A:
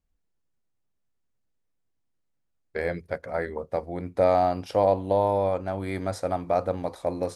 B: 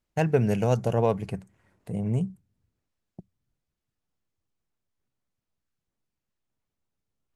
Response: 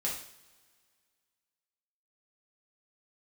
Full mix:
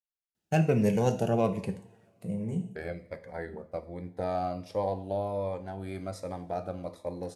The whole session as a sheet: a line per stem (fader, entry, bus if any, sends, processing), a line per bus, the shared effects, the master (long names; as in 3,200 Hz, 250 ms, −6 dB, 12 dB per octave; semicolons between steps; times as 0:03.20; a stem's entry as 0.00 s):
−9.0 dB, 0.00 s, send −10.5 dB, downward expander −36 dBFS
−2.5 dB, 0.35 s, send −8 dB, high-pass filter 120 Hz; automatic ducking −15 dB, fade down 0.80 s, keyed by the first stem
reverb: on, pre-delay 3 ms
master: phaser whose notches keep moving one way falling 1.3 Hz